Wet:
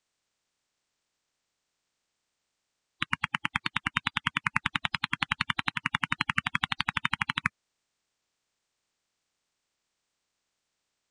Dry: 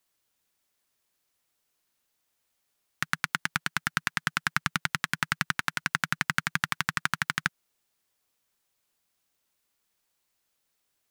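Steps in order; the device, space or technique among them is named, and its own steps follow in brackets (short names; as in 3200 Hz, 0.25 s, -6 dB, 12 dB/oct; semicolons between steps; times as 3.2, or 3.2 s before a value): clip after many re-uploads (LPF 7300 Hz 24 dB/oct; bin magnitudes rounded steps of 30 dB)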